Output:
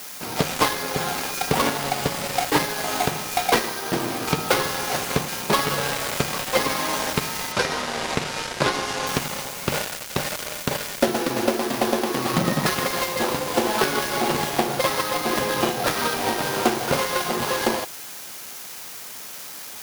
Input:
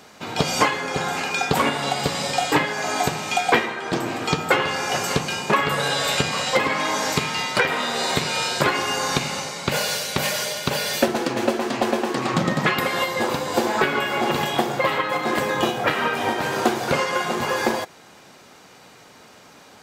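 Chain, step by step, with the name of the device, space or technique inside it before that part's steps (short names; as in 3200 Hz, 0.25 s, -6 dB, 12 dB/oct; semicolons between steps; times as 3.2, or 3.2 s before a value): budget class-D amplifier (switching dead time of 0.18 ms; switching spikes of -20.5 dBFS); 7.52–9.07 LPF 7400 Hz 12 dB/oct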